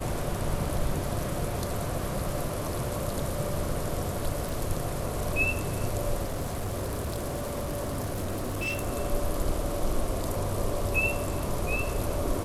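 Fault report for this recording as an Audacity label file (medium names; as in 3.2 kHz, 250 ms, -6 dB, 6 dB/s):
4.490000	4.490000	pop
6.240000	8.880000	clipped -27 dBFS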